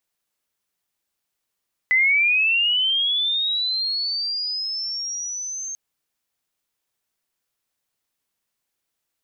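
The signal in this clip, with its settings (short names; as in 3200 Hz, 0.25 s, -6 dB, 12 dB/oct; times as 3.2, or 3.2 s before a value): chirp linear 2000 Hz -> 6400 Hz -14 dBFS -> -28 dBFS 3.84 s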